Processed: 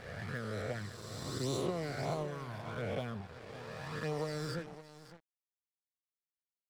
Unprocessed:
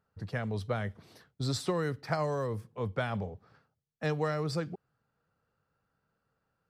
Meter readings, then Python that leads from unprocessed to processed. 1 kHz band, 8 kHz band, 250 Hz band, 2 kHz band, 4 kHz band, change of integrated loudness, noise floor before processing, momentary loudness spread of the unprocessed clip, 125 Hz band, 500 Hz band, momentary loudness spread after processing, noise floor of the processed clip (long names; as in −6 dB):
−5.5 dB, −1.0 dB, −4.5 dB, −4.0 dB, −2.5 dB, −5.5 dB, −82 dBFS, 10 LU, −5.5 dB, −4.5 dB, 12 LU, below −85 dBFS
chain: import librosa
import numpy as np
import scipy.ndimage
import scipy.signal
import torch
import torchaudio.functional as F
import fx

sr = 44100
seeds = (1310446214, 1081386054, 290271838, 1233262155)

y = fx.spec_swells(x, sr, rise_s=2.97)
y = fx.env_flanger(y, sr, rest_ms=5.7, full_db=-23.0)
y = y + 10.0 ** (-11.0 / 20.0) * np.pad(y, (int(564 * sr / 1000.0), 0))[:len(y)]
y = np.sign(y) * np.maximum(np.abs(y) - 10.0 ** (-43.0 / 20.0), 0.0)
y = F.gain(torch.from_numpy(y), -6.0).numpy()